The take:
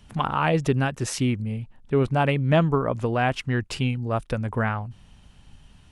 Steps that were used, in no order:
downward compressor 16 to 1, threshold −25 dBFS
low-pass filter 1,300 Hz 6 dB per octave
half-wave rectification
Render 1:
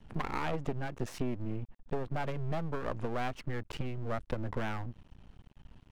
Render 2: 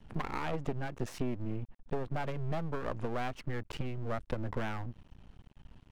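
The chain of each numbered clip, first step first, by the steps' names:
low-pass filter, then downward compressor, then half-wave rectification
downward compressor, then low-pass filter, then half-wave rectification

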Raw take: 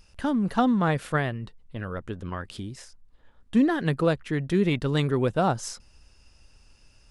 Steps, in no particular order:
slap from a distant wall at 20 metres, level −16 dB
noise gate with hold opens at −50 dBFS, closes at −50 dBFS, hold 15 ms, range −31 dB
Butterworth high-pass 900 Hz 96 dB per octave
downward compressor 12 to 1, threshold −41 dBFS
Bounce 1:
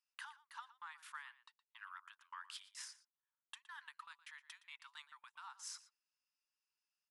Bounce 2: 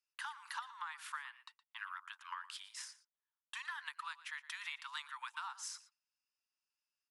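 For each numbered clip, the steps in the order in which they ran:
downward compressor, then Butterworth high-pass, then noise gate with hold, then slap from a distant wall
Butterworth high-pass, then noise gate with hold, then downward compressor, then slap from a distant wall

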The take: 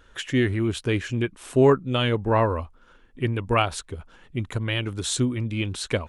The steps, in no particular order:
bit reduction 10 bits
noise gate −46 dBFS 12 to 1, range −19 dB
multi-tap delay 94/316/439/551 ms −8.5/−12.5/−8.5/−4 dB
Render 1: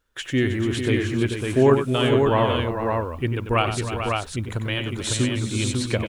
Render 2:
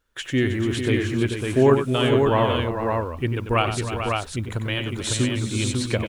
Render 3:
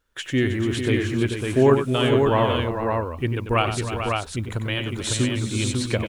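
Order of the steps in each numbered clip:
multi-tap delay, then bit reduction, then noise gate
bit reduction, then multi-tap delay, then noise gate
bit reduction, then noise gate, then multi-tap delay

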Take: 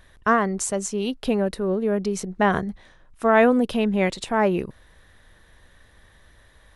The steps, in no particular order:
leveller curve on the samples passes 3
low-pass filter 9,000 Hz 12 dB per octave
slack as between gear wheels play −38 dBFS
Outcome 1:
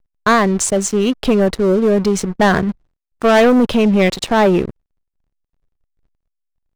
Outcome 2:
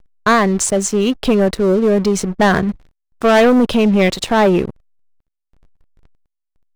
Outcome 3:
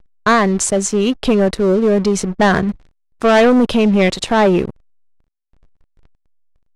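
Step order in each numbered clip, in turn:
slack as between gear wheels, then low-pass filter, then leveller curve on the samples
low-pass filter, then leveller curve on the samples, then slack as between gear wheels
leveller curve on the samples, then slack as between gear wheels, then low-pass filter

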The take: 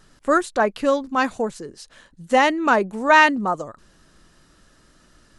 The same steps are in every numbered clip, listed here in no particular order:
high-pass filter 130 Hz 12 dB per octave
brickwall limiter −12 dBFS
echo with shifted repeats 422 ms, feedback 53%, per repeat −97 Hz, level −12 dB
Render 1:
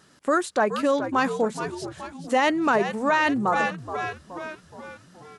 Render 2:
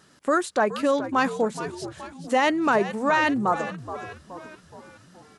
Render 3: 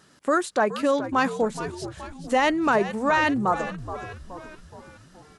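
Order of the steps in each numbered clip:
echo with shifted repeats, then brickwall limiter, then high-pass filter
brickwall limiter, then echo with shifted repeats, then high-pass filter
brickwall limiter, then high-pass filter, then echo with shifted repeats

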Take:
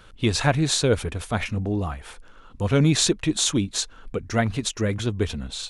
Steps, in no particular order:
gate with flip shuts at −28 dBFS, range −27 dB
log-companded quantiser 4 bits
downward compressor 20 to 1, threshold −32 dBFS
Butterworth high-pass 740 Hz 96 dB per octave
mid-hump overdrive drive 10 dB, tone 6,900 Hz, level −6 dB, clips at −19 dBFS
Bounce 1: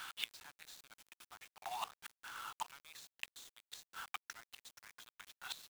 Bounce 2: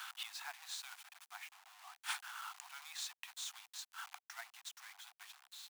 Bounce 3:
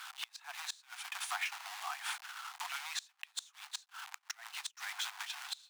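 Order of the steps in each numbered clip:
Butterworth high-pass, then downward compressor, then mid-hump overdrive, then gate with flip, then log-companded quantiser
gate with flip, then downward compressor, then mid-hump overdrive, then log-companded quantiser, then Butterworth high-pass
log-companded quantiser, then downward compressor, then Butterworth high-pass, then gate with flip, then mid-hump overdrive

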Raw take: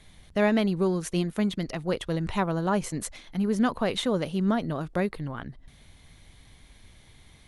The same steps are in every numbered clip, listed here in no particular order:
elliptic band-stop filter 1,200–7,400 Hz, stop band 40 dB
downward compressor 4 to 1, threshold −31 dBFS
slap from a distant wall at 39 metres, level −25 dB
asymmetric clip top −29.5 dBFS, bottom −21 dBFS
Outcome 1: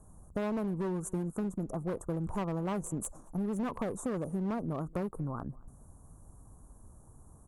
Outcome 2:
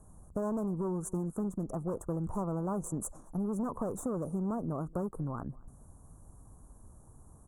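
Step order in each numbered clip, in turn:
elliptic band-stop filter, then asymmetric clip, then downward compressor, then slap from a distant wall
asymmetric clip, then elliptic band-stop filter, then downward compressor, then slap from a distant wall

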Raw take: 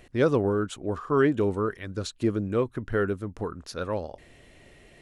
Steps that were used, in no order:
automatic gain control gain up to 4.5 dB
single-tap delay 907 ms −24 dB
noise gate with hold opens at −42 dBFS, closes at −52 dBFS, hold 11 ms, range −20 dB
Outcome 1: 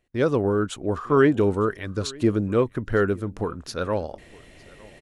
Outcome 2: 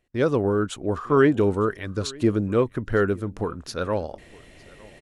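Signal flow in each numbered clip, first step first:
single-tap delay, then noise gate with hold, then automatic gain control
single-tap delay, then automatic gain control, then noise gate with hold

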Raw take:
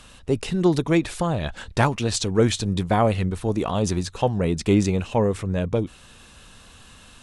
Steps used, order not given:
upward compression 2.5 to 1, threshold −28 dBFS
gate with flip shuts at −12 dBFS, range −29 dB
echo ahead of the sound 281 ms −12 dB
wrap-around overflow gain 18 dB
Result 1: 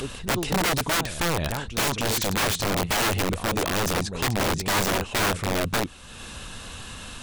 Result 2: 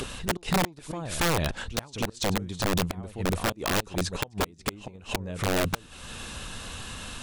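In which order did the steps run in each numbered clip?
upward compression, then echo ahead of the sound, then wrap-around overflow, then gate with flip
gate with flip, then upward compression, then echo ahead of the sound, then wrap-around overflow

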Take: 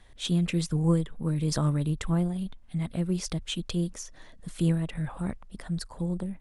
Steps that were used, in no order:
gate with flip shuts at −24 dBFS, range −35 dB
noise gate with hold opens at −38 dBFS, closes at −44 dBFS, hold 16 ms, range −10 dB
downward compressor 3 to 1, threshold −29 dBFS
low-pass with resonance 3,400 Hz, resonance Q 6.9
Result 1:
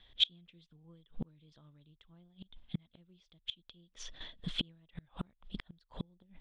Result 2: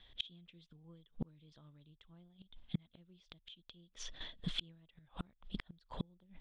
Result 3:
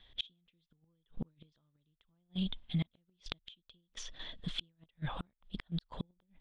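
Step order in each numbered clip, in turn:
noise gate with hold, then gate with flip, then downward compressor, then low-pass with resonance
noise gate with hold, then low-pass with resonance, then gate with flip, then downward compressor
downward compressor, then low-pass with resonance, then gate with flip, then noise gate with hold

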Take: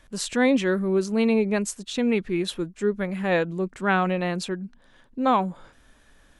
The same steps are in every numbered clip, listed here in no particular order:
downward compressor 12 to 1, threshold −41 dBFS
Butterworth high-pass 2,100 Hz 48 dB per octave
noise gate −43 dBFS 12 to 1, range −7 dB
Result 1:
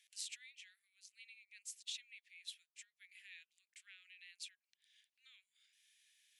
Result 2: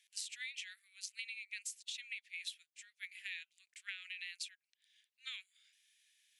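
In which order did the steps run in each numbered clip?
noise gate, then downward compressor, then Butterworth high-pass
Butterworth high-pass, then noise gate, then downward compressor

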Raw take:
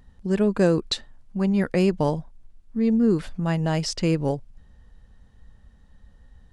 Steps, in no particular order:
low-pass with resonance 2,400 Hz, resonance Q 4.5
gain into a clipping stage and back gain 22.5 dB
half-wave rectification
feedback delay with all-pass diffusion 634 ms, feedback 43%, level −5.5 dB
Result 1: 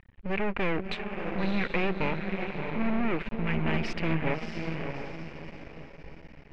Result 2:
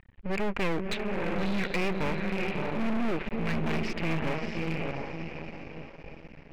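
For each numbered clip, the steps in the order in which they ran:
gain into a clipping stage and back, then feedback delay with all-pass diffusion, then half-wave rectification, then low-pass with resonance
feedback delay with all-pass diffusion, then half-wave rectification, then low-pass with resonance, then gain into a clipping stage and back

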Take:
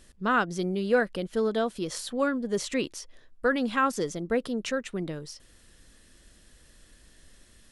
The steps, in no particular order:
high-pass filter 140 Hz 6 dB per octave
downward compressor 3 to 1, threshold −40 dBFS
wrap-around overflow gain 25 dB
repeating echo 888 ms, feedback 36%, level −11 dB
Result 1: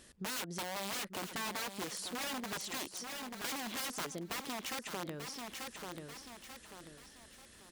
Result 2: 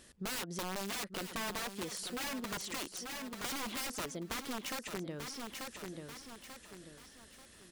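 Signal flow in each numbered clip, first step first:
wrap-around overflow, then repeating echo, then downward compressor, then high-pass filter
high-pass filter, then wrap-around overflow, then repeating echo, then downward compressor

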